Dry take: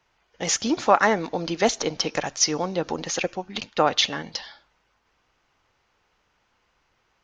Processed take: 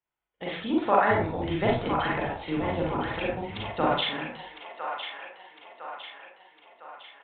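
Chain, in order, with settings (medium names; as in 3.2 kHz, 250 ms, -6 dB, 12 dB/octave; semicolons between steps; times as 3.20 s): 1.10–3.86 s: octave divider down 1 oct, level +2 dB; gate -38 dBFS, range -18 dB; feedback echo behind a band-pass 1006 ms, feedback 51%, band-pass 1.5 kHz, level -5 dB; reverberation RT60 0.40 s, pre-delay 34 ms, DRR -3 dB; resampled via 8 kHz; trim -8.5 dB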